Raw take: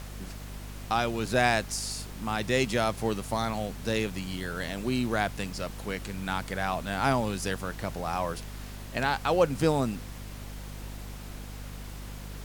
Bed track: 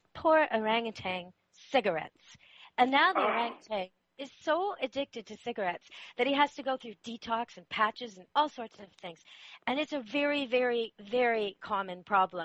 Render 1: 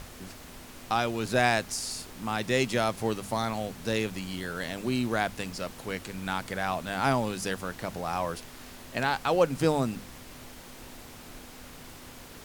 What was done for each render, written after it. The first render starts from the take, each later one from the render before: notches 50/100/150/200 Hz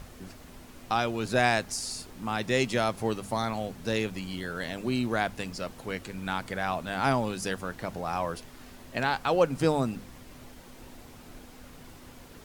denoiser 6 dB, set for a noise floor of -47 dBFS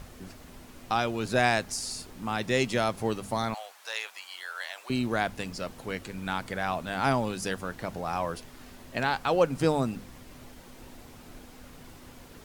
3.54–4.9 HPF 780 Hz 24 dB/oct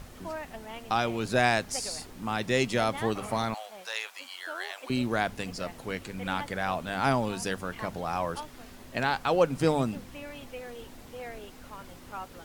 add bed track -13.5 dB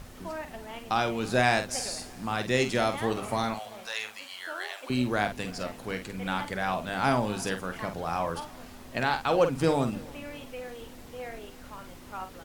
doubler 48 ms -8.5 dB; feedback echo 0.333 s, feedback 44%, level -23 dB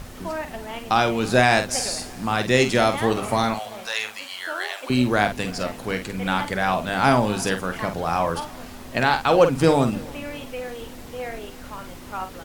gain +7.5 dB; limiter -3 dBFS, peak gain reduction 2.5 dB

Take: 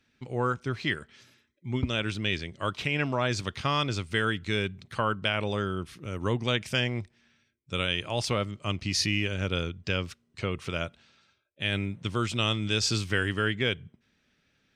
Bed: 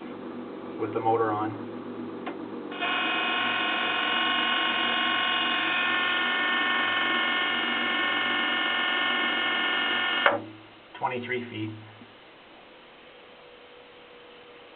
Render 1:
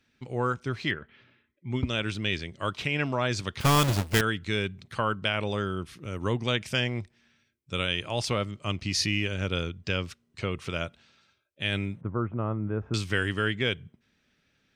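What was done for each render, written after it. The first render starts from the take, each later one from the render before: 0.91–1.71 LPF 3000 Hz 24 dB/oct; 3.6–4.21 half-waves squared off; 12.01–12.94 inverse Chebyshev low-pass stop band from 4200 Hz, stop band 60 dB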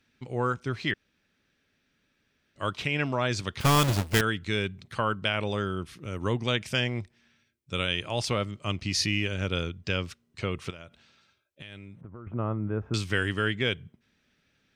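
0.94–2.56 room tone; 10.7–12.27 compressor, threshold -41 dBFS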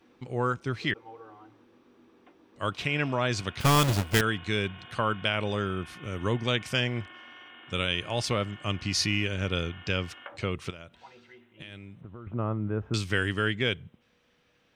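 add bed -23 dB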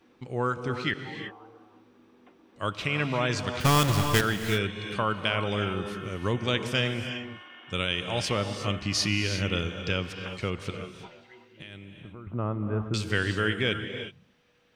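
non-linear reverb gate 0.39 s rising, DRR 7 dB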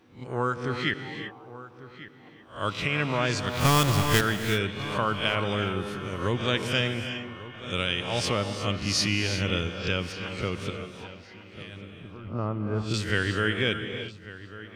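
spectral swells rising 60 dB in 0.35 s; darkening echo 1.145 s, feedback 42%, low-pass 3600 Hz, level -16 dB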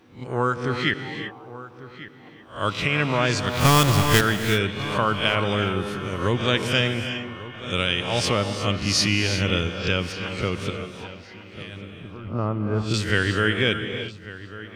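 gain +4.5 dB

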